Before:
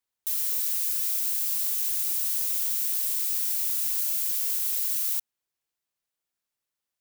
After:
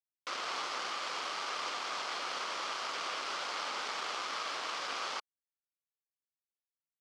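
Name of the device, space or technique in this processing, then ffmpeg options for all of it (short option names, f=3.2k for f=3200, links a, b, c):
hand-held game console: -af "acrusher=bits=3:mix=0:aa=0.000001,highpass=470,equalizer=f=1.2k:t=q:w=4:g=8,equalizer=f=1.8k:t=q:w=4:g=-5,equalizer=f=2.6k:t=q:w=4:g=-4,equalizer=f=3.8k:t=q:w=4:g=-6,lowpass=f=4.4k:w=0.5412,lowpass=f=4.4k:w=1.3066"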